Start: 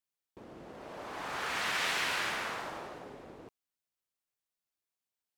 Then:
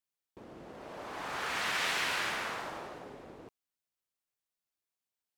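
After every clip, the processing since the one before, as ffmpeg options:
-af anull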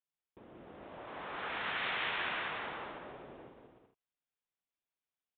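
-af "aecho=1:1:180|297|373|422.5|454.6:0.631|0.398|0.251|0.158|0.1,aresample=8000,aresample=44100,volume=0.562"

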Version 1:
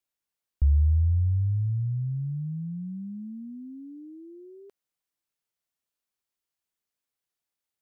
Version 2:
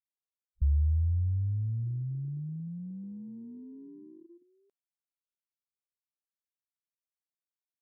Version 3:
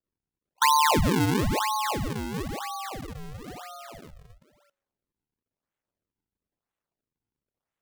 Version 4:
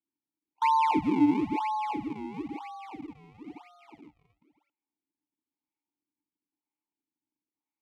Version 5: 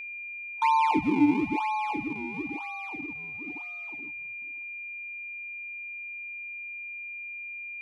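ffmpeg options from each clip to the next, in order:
-af "afwtdn=0.0316,volume=0.562"
-af "aeval=exprs='val(0)*sin(2*PI*970*n/s)':c=same,bandreject=f=185:t=h:w=4,bandreject=f=370:t=h:w=4,bandreject=f=555:t=h:w=4,bandreject=f=740:t=h:w=4,bandreject=f=925:t=h:w=4,bandreject=f=1110:t=h:w=4,bandreject=f=1295:t=h:w=4,bandreject=f=1480:t=h:w=4,bandreject=f=1665:t=h:w=4,bandreject=f=1850:t=h:w=4,bandreject=f=2035:t=h:w=4,bandreject=f=2220:t=h:w=4,bandreject=f=2405:t=h:w=4,bandreject=f=2590:t=h:w=4,bandreject=f=2775:t=h:w=4,bandreject=f=2960:t=h:w=4,bandreject=f=3145:t=h:w=4,bandreject=f=3330:t=h:w=4,bandreject=f=3515:t=h:w=4,bandreject=f=3700:t=h:w=4,bandreject=f=3885:t=h:w=4,bandreject=f=4070:t=h:w=4,bandreject=f=4255:t=h:w=4,bandreject=f=4440:t=h:w=4,bandreject=f=4625:t=h:w=4,bandreject=f=4810:t=h:w=4,bandreject=f=4995:t=h:w=4,bandreject=f=5180:t=h:w=4,bandreject=f=5365:t=h:w=4,bandreject=f=5550:t=h:w=4,bandreject=f=5735:t=h:w=4,bandreject=f=5920:t=h:w=4,bandreject=f=6105:t=h:w=4,bandreject=f=6290:t=h:w=4,bandreject=f=6475:t=h:w=4,bandreject=f=6660:t=h:w=4,bandreject=f=6845:t=h:w=4,acrusher=samples=42:mix=1:aa=0.000001:lfo=1:lforange=67.2:lforate=1,volume=2.37"
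-filter_complex "[0:a]asplit=3[s0][s1][s2];[s0]bandpass=f=300:t=q:w=8,volume=1[s3];[s1]bandpass=f=870:t=q:w=8,volume=0.501[s4];[s2]bandpass=f=2240:t=q:w=8,volume=0.355[s5];[s3][s4][s5]amix=inputs=3:normalize=0,volume=2.11"
-af "aeval=exprs='val(0)+0.0141*sin(2*PI*2400*n/s)':c=same,volume=1.12"

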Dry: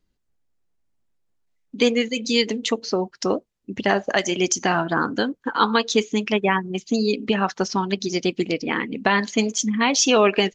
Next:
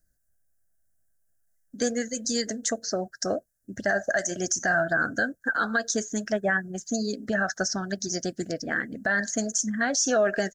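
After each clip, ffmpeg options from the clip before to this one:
-af "firequalizer=gain_entry='entry(110,0);entry(180,-6);entry(440,-11);entry(650,5);entry(950,-22);entry(1600,9);entry(2400,-26);entry(5500,3);entry(9700,14)':delay=0.05:min_phase=1,alimiter=limit=0.178:level=0:latency=1:release=45"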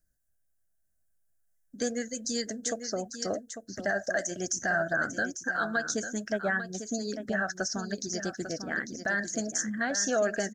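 -af "aecho=1:1:847:0.335,volume=0.596"

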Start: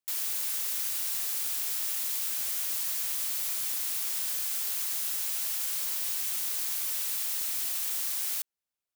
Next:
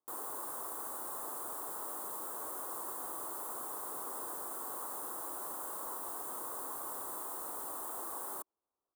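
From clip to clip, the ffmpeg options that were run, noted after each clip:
-af "firequalizer=gain_entry='entry(200,0);entry(310,12);entry(590,8);entry(1100,11);entry(1600,-7);entry(2400,-28);entry(3400,-22);entry(5500,-25);entry(8500,-9);entry(14000,-12)':delay=0.05:min_phase=1"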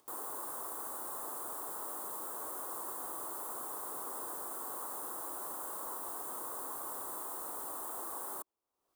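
-af "acompressor=mode=upward:threshold=0.00224:ratio=2.5"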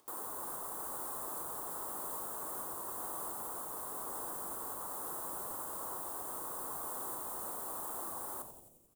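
-filter_complex "[0:a]alimiter=level_in=2.51:limit=0.0631:level=0:latency=1:release=444,volume=0.398,asplit=2[s0][s1];[s1]asplit=8[s2][s3][s4][s5][s6][s7][s8][s9];[s2]adelay=88,afreqshift=-140,volume=0.355[s10];[s3]adelay=176,afreqshift=-280,volume=0.219[s11];[s4]adelay=264,afreqshift=-420,volume=0.136[s12];[s5]adelay=352,afreqshift=-560,volume=0.0841[s13];[s6]adelay=440,afreqshift=-700,volume=0.0525[s14];[s7]adelay=528,afreqshift=-840,volume=0.0324[s15];[s8]adelay=616,afreqshift=-980,volume=0.0202[s16];[s9]adelay=704,afreqshift=-1120,volume=0.0124[s17];[s10][s11][s12][s13][s14][s15][s16][s17]amix=inputs=8:normalize=0[s18];[s0][s18]amix=inputs=2:normalize=0,volume=1.12"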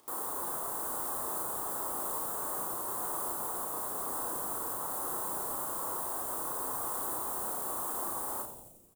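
-filter_complex "[0:a]asplit=2[s0][s1];[s1]adelay=34,volume=0.708[s2];[s0][s2]amix=inputs=2:normalize=0,volume=1.58"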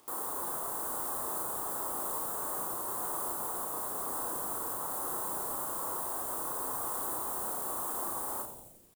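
-af "acrusher=bits=10:mix=0:aa=0.000001"

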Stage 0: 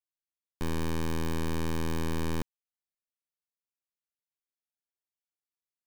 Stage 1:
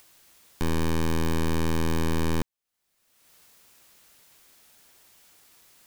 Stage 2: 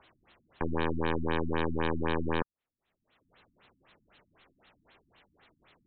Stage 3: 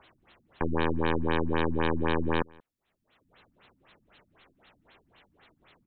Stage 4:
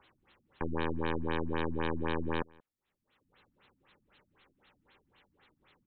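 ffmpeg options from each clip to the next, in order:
-af "acompressor=mode=upward:threshold=0.0141:ratio=2.5,volume=1.88"
-filter_complex "[0:a]acrossover=split=430[s0][s1];[s0]asoftclip=type=tanh:threshold=0.0188[s2];[s2][s1]amix=inputs=2:normalize=0,afftfilt=real='re*lt(b*sr/1024,280*pow(4300/280,0.5+0.5*sin(2*PI*3.9*pts/sr)))':imag='im*lt(b*sr/1024,280*pow(4300/280,0.5+0.5*sin(2*PI*3.9*pts/sr)))':win_size=1024:overlap=0.75,volume=1.5"
-filter_complex "[0:a]asplit=2[s0][s1];[s1]adelay=180.8,volume=0.0447,highshelf=f=4000:g=-4.07[s2];[s0][s2]amix=inputs=2:normalize=0,volume=1.41"
-af "asuperstop=centerf=670:order=4:qfactor=6.3,volume=0.501"

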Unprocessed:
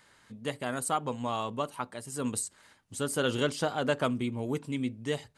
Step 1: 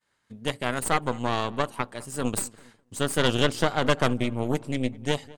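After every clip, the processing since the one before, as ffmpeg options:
-filter_complex "[0:a]aeval=exprs='0.2*(cos(1*acos(clip(val(0)/0.2,-1,1)))-cos(1*PI/2))+0.0794*(cos(4*acos(clip(val(0)/0.2,-1,1)))-cos(4*PI/2))':c=same,asplit=2[s0][s1];[s1]adelay=203,lowpass=f=2000:p=1,volume=0.0891,asplit=2[s2][s3];[s3]adelay=203,lowpass=f=2000:p=1,volume=0.49,asplit=2[s4][s5];[s5]adelay=203,lowpass=f=2000:p=1,volume=0.49,asplit=2[s6][s7];[s7]adelay=203,lowpass=f=2000:p=1,volume=0.49[s8];[s0][s2][s4][s6][s8]amix=inputs=5:normalize=0,agate=range=0.0224:threshold=0.00282:ratio=3:detection=peak,volume=1.33"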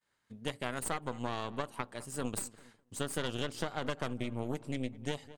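-af "acompressor=threshold=0.0631:ratio=6,volume=0.501"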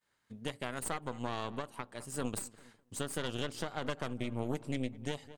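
-af "alimiter=limit=0.075:level=0:latency=1:release=386,volume=1.12"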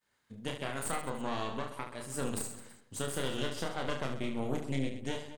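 -af "aecho=1:1:30|72|130.8|213.1|328.4:0.631|0.398|0.251|0.158|0.1"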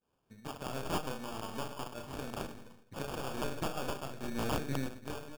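-filter_complex "[0:a]acrossover=split=1600[s0][s1];[s0]aeval=exprs='val(0)*(1-0.7/2+0.7/2*cos(2*PI*1.1*n/s))':c=same[s2];[s1]aeval=exprs='val(0)*(1-0.7/2-0.7/2*cos(2*PI*1.1*n/s))':c=same[s3];[s2][s3]amix=inputs=2:normalize=0,acrusher=samples=22:mix=1:aa=0.000001,aeval=exprs='(mod(18.8*val(0)+1,2)-1)/18.8':c=same,volume=1.19"

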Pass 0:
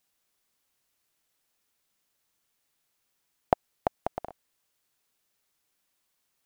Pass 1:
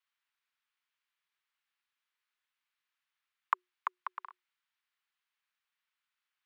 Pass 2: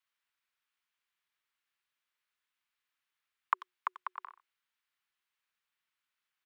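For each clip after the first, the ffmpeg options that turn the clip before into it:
-filter_complex "[0:a]acrossover=split=600 3300:gain=0.0794 1 0.112[s0][s1][s2];[s0][s1][s2]amix=inputs=3:normalize=0,afreqshift=360,volume=0.708"
-filter_complex "[0:a]asplit=2[s0][s1];[s1]adelay=90,highpass=300,lowpass=3400,asoftclip=type=hard:threshold=0.0891,volume=0.158[s2];[s0][s2]amix=inputs=2:normalize=0"

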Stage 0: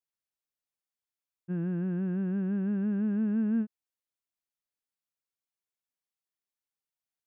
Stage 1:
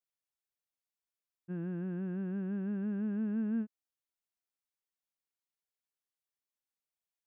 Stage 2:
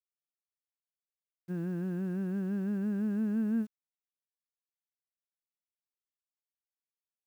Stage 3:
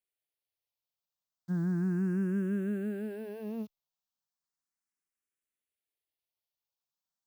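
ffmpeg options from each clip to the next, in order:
-af "equalizer=f=150:w=1.5:g=-3.5,volume=0.631"
-af "acrusher=bits=10:mix=0:aa=0.000001,volume=1.41"
-filter_complex "[0:a]asplit=2[s0][s1];[s1]afreqshift=0.35[s2];[s0][s2]amix=inputs=2:normalize=1,volume=1.78"

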